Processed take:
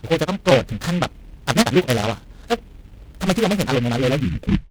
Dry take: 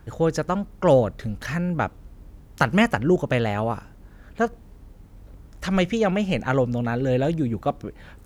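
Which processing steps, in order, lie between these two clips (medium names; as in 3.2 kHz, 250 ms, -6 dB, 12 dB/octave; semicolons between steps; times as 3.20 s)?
tape stop on the ending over 1.05 s; granular stretch 0.57×, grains 89 ms; delay time shaken by noise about 2.1 kHz, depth 0.1 ms; trim +4.5 dB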